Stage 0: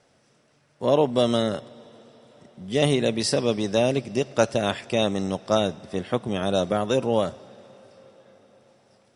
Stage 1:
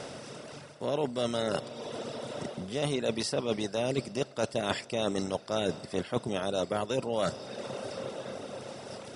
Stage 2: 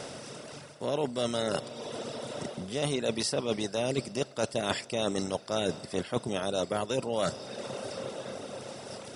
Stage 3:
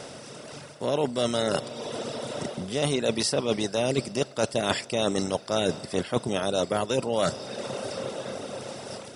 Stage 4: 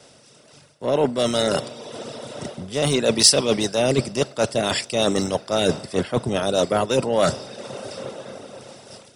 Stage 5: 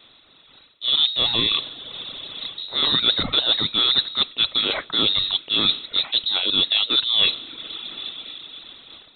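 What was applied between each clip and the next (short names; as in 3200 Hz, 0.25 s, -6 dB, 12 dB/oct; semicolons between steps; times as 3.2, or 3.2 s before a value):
per-bin compression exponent 0.6; reverb removal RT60 1.1 s; reverse; compressor 12:1, threshold -27 dBFS, peak gain reduction 16 dB; reverse; gain +1 dB
high shelf 6000 Hz +6 dB
AGC gain up to 4.5 dB
in parallel at -6.5 dB: overloaded stage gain 22 dB; on the sum: maximiser +10.5 dB; three-band expander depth 100%; gain -7.5 dB
inverted band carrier 4000 Hz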